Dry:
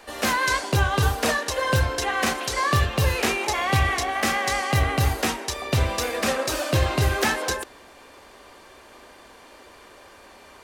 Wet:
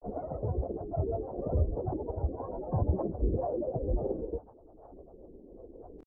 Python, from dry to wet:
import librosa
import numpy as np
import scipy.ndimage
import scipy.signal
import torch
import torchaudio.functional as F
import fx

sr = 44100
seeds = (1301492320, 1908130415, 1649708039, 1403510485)

y = scipy.signal.sosfilt(scipy.signal.butter(6, 560.0, 'lowpass', fs=sr, output='sos'), x)
y = fx.peak_eq(y, sr, hz=160.0, db=-9.0, octaves=2.2)
y = fx.tremolo_random(y, sr, seeds[0], hz=3.5, depth_pct=55)
y = fx.hum_notches(y, sr, base_hz=50, count=7)
y = fx.echo_feedback(y, sr, ms=141, feedback_pct=48, wet_db=-16.0)
y = fx.stretch_vocoder_free(y, sr, factor=0.57)
y = fx.granulator(y, sr, seeds[1], grain_ms=100.0, per_s=20.0, spray_ms=100.0, spread_st=7)
y = fx.band_squash(y, sr, depth_pct=40)
y = F.gain(torch.from_numpy(y), 7.0).numpy()